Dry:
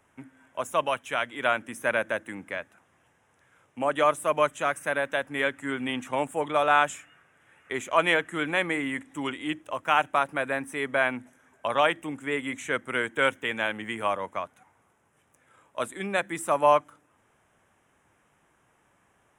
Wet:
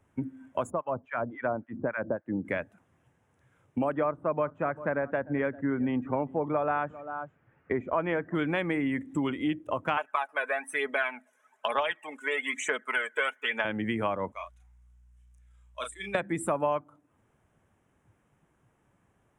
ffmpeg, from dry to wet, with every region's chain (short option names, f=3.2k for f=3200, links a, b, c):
-filter_complex "[0:a]asettb=1/sr,asplit=3[a][b][c];[a]atrim=end=0.704[d];[b]atrim=start=0.7:end=2.45,asetpts=PTS-STARTPTS,afade=t=in:d=0.004:c=qsin,afade=t=out:st=1.746:d=0.004:c=qsin,lowpass=1.3k,acrossover=split=1100[e][f];[e]aeval=exprs='val(0)*(1-1/2+1/2*cos(2*PI*3.6*n/s))':c=same[g];[f]aeval=exprs='val(0)*(1-1/2-1/2*cos(2*PI*3.6*n/s))':c=same[h];[g][h]amix=inputs=2:normalize=0[i];[c]atrim=start=2.446[j];[d][i]acrossfade=d=0.004:c1=hsin:c2=qsin[k];[k][j]acrossfade=d=0.004:c1=qsin:c2=hsin,asettb=1/sr,asplit=3[l][m][n];[l]atrim=end=3.924[o];[m]atrim=start=3.92:end=8.35,asetpts=PTS-STARTPTS,afade=t=in:d=0.004:c=qsin,afade=t=out:st=4.426:d=0.004:c=qsin,lowpass=1.7k,aecho=1:1:394:0.0841,atrim=end_sample=195363[p];[n]atrim=start=8.346[q];[o][p]acrossfade=d=0.004:c1=hsin:c2=qsin[r];[r][q]acrossfade=d=0.004:c1=qsin:c2=hsin,asettb=1/sr,asplit=3[s][t][u];[s]atrim=end=9.974[v];[t]atrim=start=9.97:end=13.65,asetpts=PTS-STARTPTS,afade=t=in:d=0.004:c=qsin,afade=t=out:st=3.676:d=0.004:c=qsin,highpass=760,aecho=1:1:4.7:0.52,atrim=end_sample=162288,aphaser=in_gain=1:out_gain=1:delay=2.1:decay=0.52:speed=1.1:type=triangular[w];[u]atrim=start=13.646[x];[v][w]acrossfade=d=0.004:c1=hsin:c2=qsin[y];[y][x]acrossfade=d=0.004:c1=qsin:c2=hsin,asettb=1/sr,asplit=3[z][aa][ab];[z]atrim=end=14.324[ac];[aa]atrim=start=14.32:end=16.15,asetpts=PTS-STARTPTS,afade=t=in:d=0.004:c=qsin,afade=t=out:st=1.826:d=0.004:c=qsin,bandpass=f=5.6k:t=q:w=0.87,aeval=exprs='val(0)+0.000251*(sin(2*PI*60*n/s)+sin(2*PI*2*60*n/s)/2+sin(2*PI*3*60*n/s)/3+sin(2*PI*4*60*n/s)/4+sin(2*PI*5*60*n/s)/5)':c=same,asplit=2[ad][ae];[ae]adelay=35,volume=-4dB[af];[ad][af]amix=inputs=2:normalize=0,atrim=end_sample=80703[ag];[ab]atrim=start=16.146[ah];[ac][ag]acrossfade=d=0.004:c1=hsin:c2=qsin[ai];[ai][ah]acrossfade=d=0.004:c1=qsin:c2=hsin,lowshelf=f=460:g=12,afftdn=nr=15:nf=-41,acompressor=threshold=-34dB:ratio=4,volume=6dB"